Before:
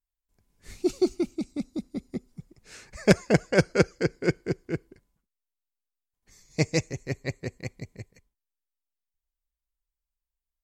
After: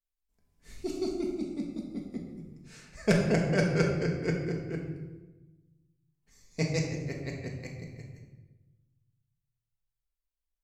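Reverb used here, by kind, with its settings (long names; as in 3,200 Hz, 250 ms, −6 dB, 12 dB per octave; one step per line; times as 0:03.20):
rectangular room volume 620 cubic metres, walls mixed, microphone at 1.6 metres
level −8 dB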